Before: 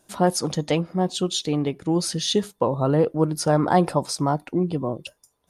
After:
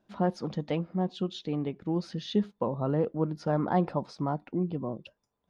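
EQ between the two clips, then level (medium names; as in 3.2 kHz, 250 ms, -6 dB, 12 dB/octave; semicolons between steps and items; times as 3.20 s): distance through air 250 m; peaking EQ 210 Hz +8 dB 0.29 oct; -8.0 dB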